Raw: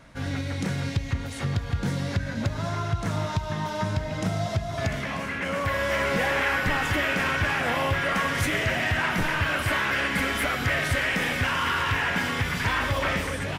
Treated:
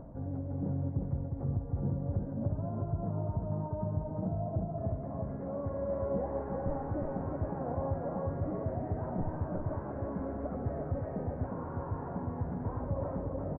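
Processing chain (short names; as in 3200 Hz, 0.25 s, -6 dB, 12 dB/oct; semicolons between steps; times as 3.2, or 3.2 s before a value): inverse Chebyshev low-pass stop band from 3400 Hz, stop band 70 dB; upward compressor, threshold -30 dBFS; echo 0.358 s -3.5 dB; gain -7 dB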